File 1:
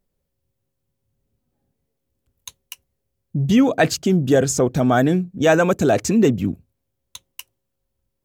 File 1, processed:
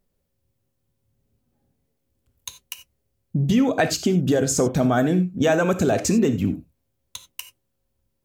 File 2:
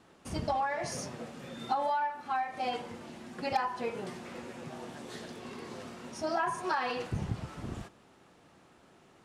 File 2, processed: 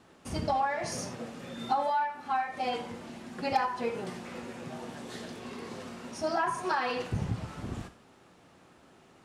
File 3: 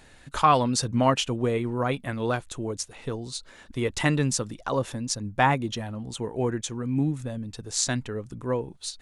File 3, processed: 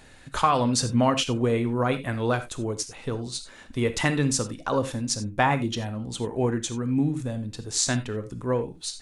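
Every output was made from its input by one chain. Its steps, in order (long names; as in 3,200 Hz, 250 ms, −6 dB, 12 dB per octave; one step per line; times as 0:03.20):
downward compressor, threshold −18 dBFS
reverb whose tail is shaped and stops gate 110 ms flat, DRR 9.5 dB
level +1.5 dB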